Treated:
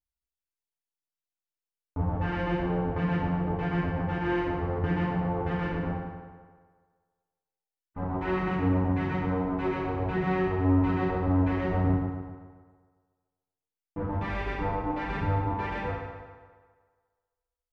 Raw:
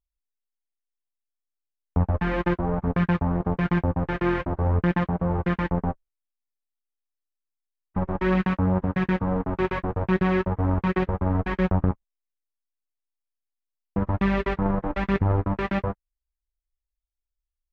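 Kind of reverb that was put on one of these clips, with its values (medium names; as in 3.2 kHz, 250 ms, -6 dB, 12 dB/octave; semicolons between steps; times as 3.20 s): FDN reverb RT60 1.6 s, low-frequency decay 0.8×, high-frequency decay 0.75×, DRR -9 dB; trim -13 dB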